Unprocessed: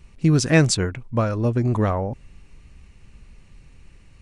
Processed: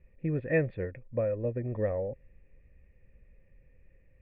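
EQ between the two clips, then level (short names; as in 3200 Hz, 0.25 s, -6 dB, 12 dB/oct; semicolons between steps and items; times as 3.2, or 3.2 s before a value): vocal tract filter e; low shelf 170 Hz +9.5 dB; 0.0 dB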